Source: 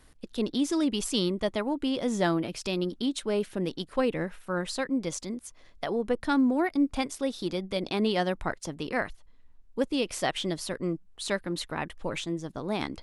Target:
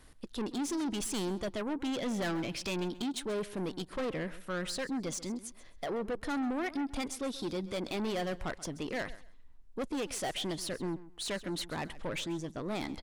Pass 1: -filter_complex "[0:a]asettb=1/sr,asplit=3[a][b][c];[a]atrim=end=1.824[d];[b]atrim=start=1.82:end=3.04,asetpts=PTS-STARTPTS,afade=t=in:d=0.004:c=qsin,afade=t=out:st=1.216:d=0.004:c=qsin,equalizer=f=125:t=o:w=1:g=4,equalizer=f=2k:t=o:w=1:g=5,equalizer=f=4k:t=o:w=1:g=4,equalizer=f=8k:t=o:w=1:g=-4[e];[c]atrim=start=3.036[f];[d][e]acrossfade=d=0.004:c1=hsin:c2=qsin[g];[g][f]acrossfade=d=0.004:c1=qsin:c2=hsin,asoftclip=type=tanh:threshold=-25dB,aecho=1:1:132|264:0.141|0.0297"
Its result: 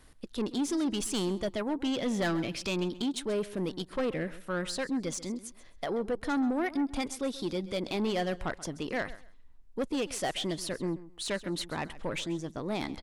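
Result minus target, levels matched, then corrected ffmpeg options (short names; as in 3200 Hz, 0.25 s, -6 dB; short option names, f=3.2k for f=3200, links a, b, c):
soft clip: distortion -5 dB
-filter_complex "[0:a]asettb=1/sr,asplit=3[a][b][c];[a]atrim=end=1.824[d];[b]atrim=start=1.82:end=3.04,asetpts=PTS-STARTPTS,afade=t=in:d=0.004:c=qsin,afade=t=out:st=1.216:d=0.004:c=qsin,equalizer=f=125:t=o:w=1:g=4,equalizer=f=2k:t=o:w=1:g=5,equalizer=f=4k:t=o:w=1:g=4,equalizer=f=8k:t=o:w=1:g=-4[e];[c]atrim=start=3.036[f];[d][e]acrossfade=d=0.004:c1=hsin:c2=qsin[g];[g][f]acrossfade=d=0.004:c1=qsin:c2=hsin,asoftclip=type=tanh:threshold=-31dB,aecho=1:1:132|264:0.141|0.0297"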